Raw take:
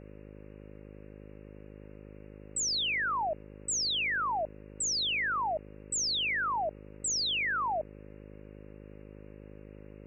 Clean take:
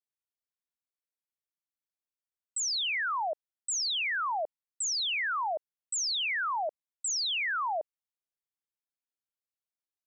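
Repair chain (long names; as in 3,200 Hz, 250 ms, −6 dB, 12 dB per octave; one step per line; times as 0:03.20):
hum removal 51.7 Hz, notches 11
noise reduction from a noise print 30 dB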